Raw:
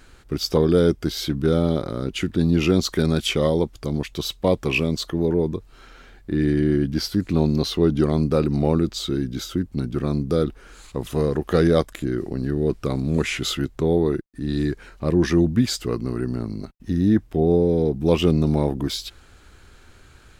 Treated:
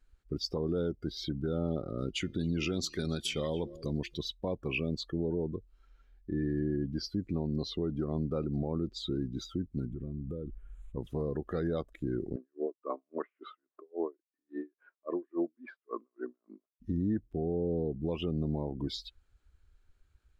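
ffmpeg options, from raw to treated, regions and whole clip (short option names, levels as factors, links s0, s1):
-filter_complex "[0:a]asettb=1/sr,asplit=3[s0][s1][s2];[s0]atrim=end=1.984[s3];[s1]atrim=start=1.98:end=4.17,asetpts=PTS-STARTPTS,afade=t=in:d=0.004:c=qsin,afade=t=out:st=2.186:d=0.004:c=qsin,highshelf=f=2300:g=9,bandreject=f=347.5:t=h:w=4,bandreject=f=695:t=h:w=4,bandreject=f=1042.5:t=h:w=4,bandreject=f=1390:t=h:w=4,bandreject=f=1737.5:t=h:w=4,bandreject=f=2085:t=h:w=4,bandreject=f=2432.5:t=h:w=4,bandreject=f=2780:t=h:w=4,bandreject=f=3127.5:t=h:w=4,bandreject=f=3475:t=h:w=4,bandreject=f=3822.5:t=h:w=4,bandreject=f=4170:t=h:w=4,bandreject=f=4517.5:t=h:w=4,bandreject=f=4865:t=h:w=4,bandreject=f=5212.5:t=h:w=4,bandreject=f=5560:t=h:w=4,bandreject=f=5907.5:t=h:w=4,bandreject=f=6255:t=h:w=4,bandreject=f=6602.5:t=h:w=4,aecho=1:1:278:0.106,atrim=end_sample=96579[s4];[s2]atrim=start=4.166[s5];[s3][s4]acrossfade=d=0.004:c1=hsin:c2=qsin[s6];[s6][s5]acrossfade=d=0.004:c1=qsin:c2=hsin,asettb=1/sr,asplit=3[s7][s8][s9];[s7]atrim=end=9.914[s10];[s8]atrim=start=9.91:end=10.97,asetpts=PTS-STARTPTS,afade=t=in:d=0.004:c=qsin,afade=t=out:st=1.056:d=0.004:c=qsin,asuperstop=centerf=4900:order=4:qfactor=1.3,lowshelf=f=72:g=11,acompressor=threshold=0.0501:ratio=12:attack=3.2:release=140:knee=1:detection=peak[s11];[s9]atrim=start=10.966[s12];[s10][s11]acrossfade=d=0.004:c1=hsin:c2=qsin[s13];[s13][s12]acrossfade=d=0.004:c1=qsin:c2=hsin,asettb=1/sr,asplit=3[s14][s15][s16];[s14]atrim=end=12.364[s17];[s15]atrim=start=12.36:end=16.78,asetpts=PTS-STARTPTS,afade=t=in:d=0.004:c=qsin,afade=t=out:st=4.416:d=0.004:c=qsin,highpass=f=300:w=0.5412,highpass=f=300:w=1.3066,equalizer=f=630:t=q:w=4:g=8,equalizer=f=1100:t=q:w=4:g=10,equalizer=f=1600:t=q:w=4:g=4,lowpass=f=2600:w=0.5412,lowpass=f=2600:w=1.3066,aeval=exprs='val(0)*pow(10,-31*(0.5-0.5*cos(2*PI*3.6*n/s))/20)':c=same[s18];[s16]atrim=start=16.776[s19];[s17][s18]acrossfade=d=0.004:c1=hsin:c2=qsin[s20];[s20][s19]acrossfade=d=0.004:c1=qsin:c2=hsin,afftdn=nr=21:nf=-31,alimiter=limit=0.168:level=0:latency=1:release=279,volume=0.422"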